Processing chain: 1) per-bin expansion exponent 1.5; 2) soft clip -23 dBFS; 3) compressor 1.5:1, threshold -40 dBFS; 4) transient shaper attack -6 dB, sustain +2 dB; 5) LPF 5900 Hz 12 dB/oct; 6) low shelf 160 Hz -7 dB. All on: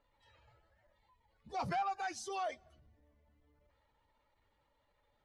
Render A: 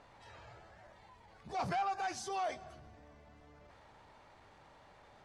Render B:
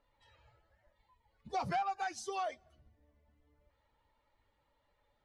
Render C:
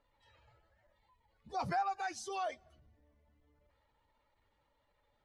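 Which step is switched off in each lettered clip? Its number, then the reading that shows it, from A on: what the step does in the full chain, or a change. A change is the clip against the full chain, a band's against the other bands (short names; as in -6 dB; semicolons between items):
1, momentary loudness spread change +14 LU; 4, loudness change +1.0 LU; 2, distortion -14 dB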